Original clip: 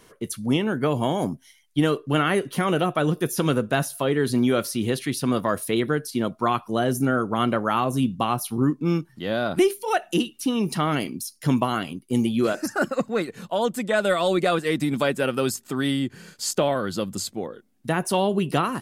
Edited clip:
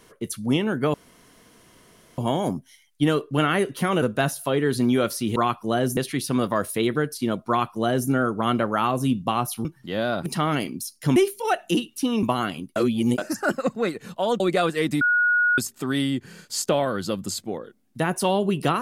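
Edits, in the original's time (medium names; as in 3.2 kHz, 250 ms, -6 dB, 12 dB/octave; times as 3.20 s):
0.94 s: insert room tone 1.24 s
2.78–3.56 s: delete
6.41–7.02 s: copy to 4.90 s
8.58–8.98 s: delete
10.66–11.56 s: move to 9.59 s
12.09–12.51 s: reverse
13.73–14.29 s: delete
14.90–15.47 s: bleep 1.45 kHz -16.5 dBFS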